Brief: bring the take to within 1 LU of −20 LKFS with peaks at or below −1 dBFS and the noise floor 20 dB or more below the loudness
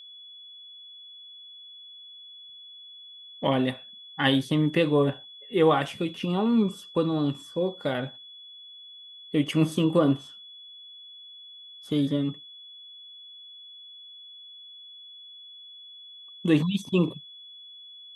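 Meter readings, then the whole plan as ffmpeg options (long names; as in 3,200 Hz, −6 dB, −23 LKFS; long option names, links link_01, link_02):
interfering tone 3,400 Hz; level of the tone −44 dBFS; integrated loudness −26.0 LKFS; sample peak −9.0 dBFS; target loudness −20.0 LKFS
→ -af "bandreject=frequency=3400:width=30"
-af "volume=6dB"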